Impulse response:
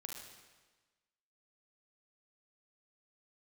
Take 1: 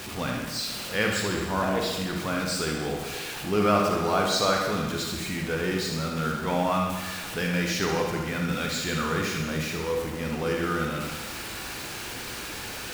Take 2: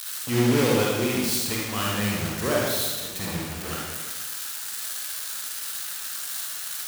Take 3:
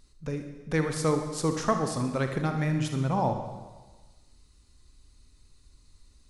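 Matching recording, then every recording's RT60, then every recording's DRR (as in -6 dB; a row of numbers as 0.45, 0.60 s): 1; 1.3, 1.3, 1.3 s; 0.0, -4.0, 5.0 dB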